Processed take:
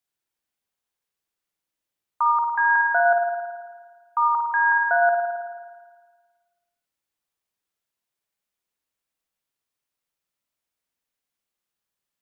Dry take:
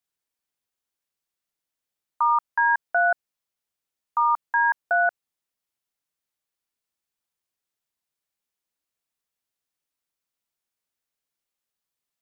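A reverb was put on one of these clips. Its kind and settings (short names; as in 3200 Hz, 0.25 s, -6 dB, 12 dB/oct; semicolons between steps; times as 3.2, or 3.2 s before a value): spring tank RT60 1.5 s, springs 53 ms, chirp 55 ms, DRR 2 dB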